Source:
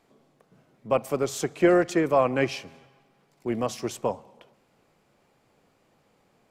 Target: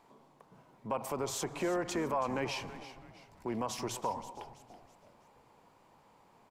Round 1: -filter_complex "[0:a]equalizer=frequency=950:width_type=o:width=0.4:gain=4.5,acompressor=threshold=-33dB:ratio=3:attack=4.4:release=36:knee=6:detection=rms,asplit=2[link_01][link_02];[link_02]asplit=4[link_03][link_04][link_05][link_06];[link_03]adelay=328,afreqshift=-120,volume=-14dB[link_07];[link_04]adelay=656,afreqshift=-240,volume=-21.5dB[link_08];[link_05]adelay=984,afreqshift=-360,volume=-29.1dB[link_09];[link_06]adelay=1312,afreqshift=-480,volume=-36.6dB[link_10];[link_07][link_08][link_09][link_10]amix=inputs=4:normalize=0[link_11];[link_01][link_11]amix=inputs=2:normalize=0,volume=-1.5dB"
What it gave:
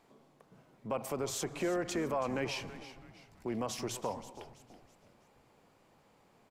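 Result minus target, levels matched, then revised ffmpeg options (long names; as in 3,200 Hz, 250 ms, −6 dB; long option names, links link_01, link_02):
1,000 Hz band −3.5 dB
-filter_complex "[0:a]equalizer=frequency=950:width_type=o:width=0.4:gain=14,acompressor=threshold=-33dB:ratio=3:attack=4.4:release=36:knee=6:detection=rms,asplit=2[link_01][link_02];[link_02]asplit=4[link_03][link_04][link_05][link_06];[link_03]adelay=328,afreqshift=-120,volume=-14dB[link_07];[link_04]adelay=656,afreqshift=-240,volume=-21.5dB[link_08];[link_05]adelay=984,afreqshift=-360,volume=-29.1dB[link_09];[link_06]adelay=1312,afreqshift=-480,volume=-36.6dB[link_10];[link_07][link_08][link_09][link_10]amix=inputs=4:normalize=0[link_11];[link_01][link_11]amix=inputs=2:normalize=0,volume=-1.5dB"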